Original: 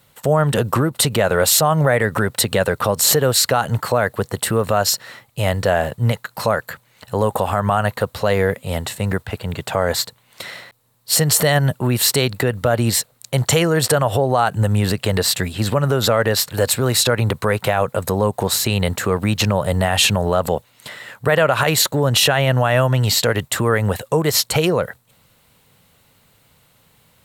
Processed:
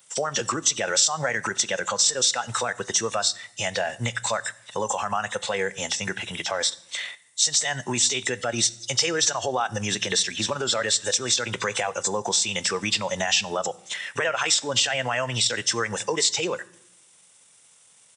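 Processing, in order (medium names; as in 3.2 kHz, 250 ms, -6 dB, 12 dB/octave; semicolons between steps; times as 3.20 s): knee-point frequency compression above 2.8 kHz 1.5:1; high-pass 110 Hz 24 dB/octave; RIAA curve recording; compression 2.5:1, threshold -26 dBFS, peak gain reduction 15 dB; spectral noise reduction 8 dB; tempo 1.5×; on a send: reverberation RT60 0.80 s, pre-delay 4 ms, DRR 16 dB; on the sum: trim +2 dB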